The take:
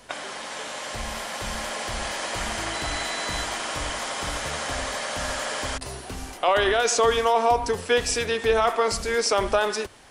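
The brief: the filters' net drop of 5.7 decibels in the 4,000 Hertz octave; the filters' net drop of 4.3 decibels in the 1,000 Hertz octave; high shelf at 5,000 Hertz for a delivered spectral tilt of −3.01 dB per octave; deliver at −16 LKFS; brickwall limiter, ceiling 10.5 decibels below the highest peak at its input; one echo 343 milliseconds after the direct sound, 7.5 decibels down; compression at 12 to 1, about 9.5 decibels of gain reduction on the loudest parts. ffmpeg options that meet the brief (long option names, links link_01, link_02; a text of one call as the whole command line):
ffmpeg -i in.wav -af "equalizer=frequency=1000:width_type=o:gain=-5.5,equalizer=frequency=4000:width_type=o:gain=-5,highshelf=frequency=5000:gain=-5,acompressor=threshold=-27dB:ratio=12,alimiter=level_in=3.5dB:limit=-24dB:level=0:latency=1,volume=-3.5dB,aecho=1:1:343:0.422,volume=19.5dB" out.wav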